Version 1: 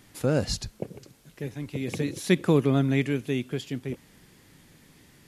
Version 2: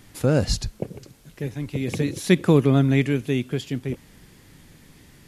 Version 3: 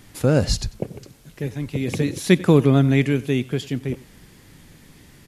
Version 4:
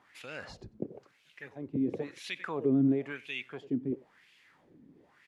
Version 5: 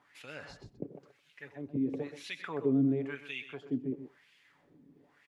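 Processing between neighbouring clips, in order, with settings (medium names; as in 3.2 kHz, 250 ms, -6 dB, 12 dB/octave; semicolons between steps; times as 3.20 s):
bass shelf 83 Hz +9 dB; trim +3.5 dB
delay 94 ms -21 dB; trim +2 dB
peak limiter -10 dBFS, peak gain reduction 8.5 dB; wah-wah 0.98 Hz 260–2800 Hz, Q 2.8; trim -1.5 dB
comb 7 ms, depth 38%; on a send: delay 127 ms -11.5 dB; on the sum: trim -3.5 dB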